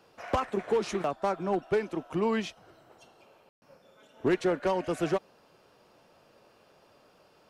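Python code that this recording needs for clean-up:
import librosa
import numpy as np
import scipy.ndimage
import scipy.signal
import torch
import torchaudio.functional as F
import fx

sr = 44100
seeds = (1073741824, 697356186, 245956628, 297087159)

y = fx.fix_ambience(x, sr, seeds[0], print_start_s=6.98, print_end_s=7.48, start_s=3.49, end_s=3.62)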